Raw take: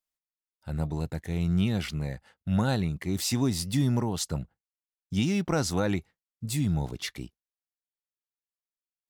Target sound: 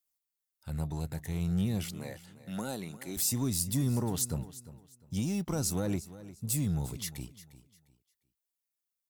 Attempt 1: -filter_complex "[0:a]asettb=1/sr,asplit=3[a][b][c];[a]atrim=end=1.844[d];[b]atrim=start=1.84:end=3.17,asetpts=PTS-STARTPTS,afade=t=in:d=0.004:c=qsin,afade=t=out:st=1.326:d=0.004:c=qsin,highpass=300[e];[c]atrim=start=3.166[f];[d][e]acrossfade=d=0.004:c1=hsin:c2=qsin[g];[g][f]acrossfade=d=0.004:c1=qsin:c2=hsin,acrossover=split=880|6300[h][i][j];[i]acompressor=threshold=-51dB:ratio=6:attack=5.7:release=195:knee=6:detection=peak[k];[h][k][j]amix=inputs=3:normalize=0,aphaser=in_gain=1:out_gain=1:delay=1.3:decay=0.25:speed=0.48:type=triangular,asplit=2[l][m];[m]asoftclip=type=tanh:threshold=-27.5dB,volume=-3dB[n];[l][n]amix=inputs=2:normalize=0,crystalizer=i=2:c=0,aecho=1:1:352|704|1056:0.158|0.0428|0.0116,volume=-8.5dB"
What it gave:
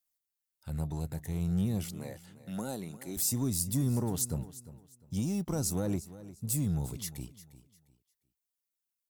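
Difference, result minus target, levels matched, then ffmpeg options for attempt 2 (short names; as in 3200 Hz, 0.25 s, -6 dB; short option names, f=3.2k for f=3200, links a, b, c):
compressor: peak gain reduction +6.5 dB
-filter_complex "[0:a]asettb=1/sr,asplit=3[a][b][c];[a]atrim=end=1.844[d];[b]atrim=start=1.84:end=3.17,asetpts=PTS-STARTPTS,afade=t=in:d=0.004:c=qsin,afade=t=out:st=1.326:d=0.004:c=qsin,highpass=300[e];[c]atrim=start=3.166[f];[d][e]acrossfade=d=0.004:c1=hsin:c2=qsin[g];[g][f]acrossfade=d=0.004:c1=qsin:c2=hsin,acrossover=split=880|6300[h][i][j];[i]acompressor=threshold=-43dB:ratio=6:attack=5.7:release=195:knee=6:detection=peak[k];[h][k][j]amix=inputs=3:normalize=0,aphaser=in_gain=1:out_gain=1:delay=1.3:decay=0.25:speed=0.48:type=triangular,asplit=2[l][m];[m]asoftclip=type=tanh:threshold=-27.5dB,volume=-3dB[n];[l][n]amix=inputs=2:normalize=0,crystalizer=i=2:c=0,aecho=1:1:352|704|1056:0.158|0.0428|0.0116,volume=-8.5dB"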